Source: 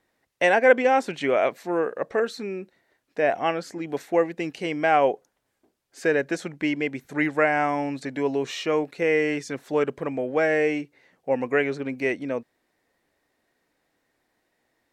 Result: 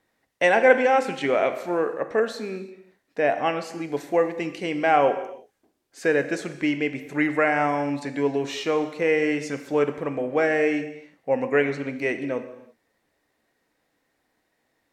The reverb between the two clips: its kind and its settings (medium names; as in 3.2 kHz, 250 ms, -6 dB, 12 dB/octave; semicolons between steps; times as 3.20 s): gated-style reverb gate 370 ms falling, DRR 8 dB